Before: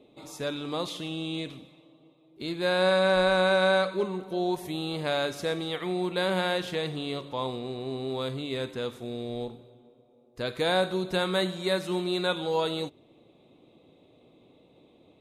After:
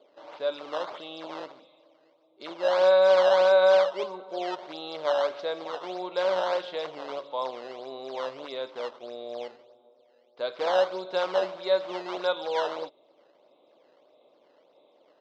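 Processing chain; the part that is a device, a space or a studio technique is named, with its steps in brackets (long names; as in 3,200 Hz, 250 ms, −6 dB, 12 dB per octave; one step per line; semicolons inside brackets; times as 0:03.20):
circuit-bent sampling toy (sample-and-hold swept by an LFO 11×, swing 160% 1.6 Hz; loudspeaker in its box 570–4,300 Hz, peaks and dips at 580 Hz +9 dB, 960 Hz +3 dB, 1,800 Hz −7 dB, 2,500 Hz −6 dB)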